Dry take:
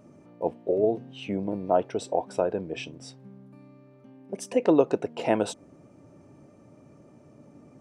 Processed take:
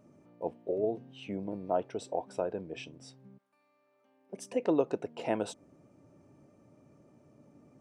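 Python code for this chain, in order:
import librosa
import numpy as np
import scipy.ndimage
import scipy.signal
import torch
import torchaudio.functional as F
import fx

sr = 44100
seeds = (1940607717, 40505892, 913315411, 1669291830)

y = fx.highpass(x, sr, hz=fx.line((3.37, 1200.0), (4.32, 500.0)), slope=12, at=(3.37, 4.32), fade=0.02)
y = y * librosa.db_to_amplitude(-7.5)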